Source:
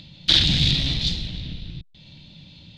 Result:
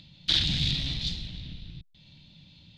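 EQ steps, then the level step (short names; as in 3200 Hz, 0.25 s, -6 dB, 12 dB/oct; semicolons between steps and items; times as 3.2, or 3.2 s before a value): bell 450 Hz -4 dB 1.3 oct; -7.5 dB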